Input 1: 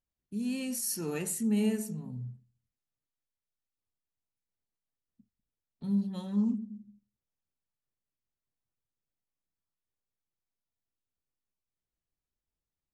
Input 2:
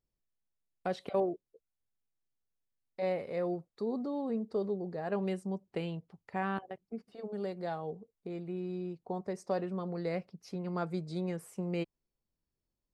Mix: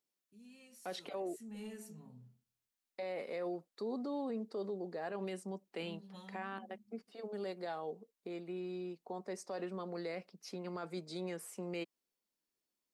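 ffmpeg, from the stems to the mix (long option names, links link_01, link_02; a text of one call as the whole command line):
ffmpeg -i stem1.wav -i stem2.wav -filter_complex "[0:a]asplit=2[link_01][link_02];[link_02]highpass=frequency=720:poles=1,volume=14dB,asoftclip=type=tanh:threshold=-18dB[link_03];[link_01][link_03]amix=inputs=2:normalize=0,lowpass=frequency=5900:poles=1,volume=-6dB,acompressor=threshold=-32dB:ratio=2.5,flanger=delay=6.4:depth=8.3:regen=-43:speed=0.27:shape=triangular,volume=-10.5dB,afade=type=in:start_time=1.3:duration=0.29:silence=0.316228[link_04];[1:a]highpass=frequency=210:width=0.5412,highpass=frequency=210:width=1.3066,tiltshelf=frequency=1400:gain=-3.5,volume=0.5dB[link_05];[link_04][link_05]amix=inputs=2:normalize=0,alimiter=level_in=8.5dB:limit=-24dB:level=0:latency=1:release=31,volume=-8.5dB" out.wav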